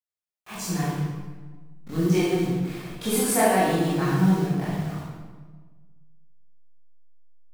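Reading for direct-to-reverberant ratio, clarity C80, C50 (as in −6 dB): −11.0 dB, 1.0 dB, −2.5 dB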